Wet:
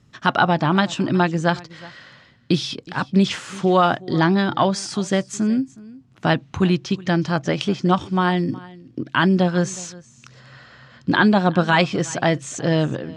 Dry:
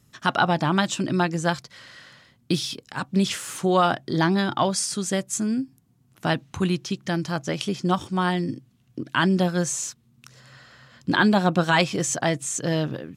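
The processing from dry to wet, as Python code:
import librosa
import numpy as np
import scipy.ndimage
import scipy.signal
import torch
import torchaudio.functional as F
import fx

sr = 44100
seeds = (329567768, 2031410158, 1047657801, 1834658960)

p1 = fx.rider(x, sr, range_db=10, speed_s=0.5)
p2 = x + F.gain(torch.from_numpy(p1), -3.0).numpy()
p3 = fx.air_absorb(p2, sr, metres=110.0)
y = p3 + 10.0 ** (-21.0 / 20.0) * np.pad(p3, (int(367 * sr / 1000.0), 0))[:len(p3)]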